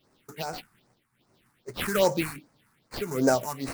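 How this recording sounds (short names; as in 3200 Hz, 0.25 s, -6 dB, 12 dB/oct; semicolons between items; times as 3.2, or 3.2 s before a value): aliases and images of a low sample rate 6600 Hz, jitter 20%; phasing stages 4, 2.5 Hz, lowest notch 500–3300 Hz; tremolo triangle 1.6 Hz, depth 75%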